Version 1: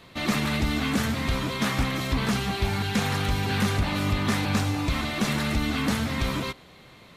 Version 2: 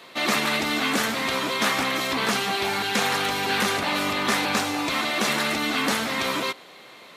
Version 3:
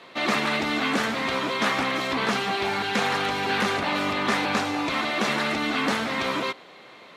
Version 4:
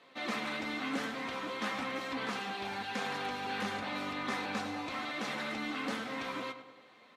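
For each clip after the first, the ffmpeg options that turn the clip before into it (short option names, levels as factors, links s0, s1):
-af "highpass=370,volume=2"
-af "aemphasis=mode=reproduction:type=50fm"
-filter_complex "[0:a]aecho=1:1:3.9:0.34,flanger=delay=6.8:depth=3.2:regen=67:speed=0.96:shape=triangular,asplit=2[s0][s1];[s1]adelay=101,lowpass=f=2600:p=1,volume=0.316,asplit=2[s2][s3];[s3]adelay=101,lowpass=f=2600:p=1,volume=0.52,asplit=2[s4][s5];[s5]adelay=101,lowpass=f=2600:p=1,volume=0.52,asplit=2[s6][s7];[s7]adelay=101,lowpass=f=2600:p=1,volume=0.52,asplit=2[s8][s9];[s9]adelay=101,lowpass=f=2600:p=1,volume=0.52,asplit=2[s10][s11];[s11]adelay=101,lowpass=f=2600:p=1,volume=0.52[s12];[s0][s2][s4][s6][s8][s10][s12]amix=inputs=7:normalize=0,volume=0.355"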